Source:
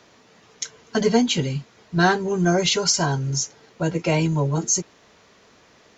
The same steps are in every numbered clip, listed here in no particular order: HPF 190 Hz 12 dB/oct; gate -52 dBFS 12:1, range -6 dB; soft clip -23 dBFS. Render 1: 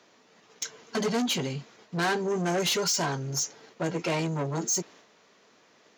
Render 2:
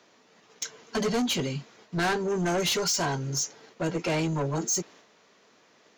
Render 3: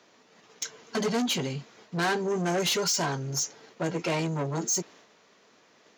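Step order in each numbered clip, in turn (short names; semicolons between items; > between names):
soft clip > HPF > gate; HPF > soft clip > gate; soft clip > gate > HPF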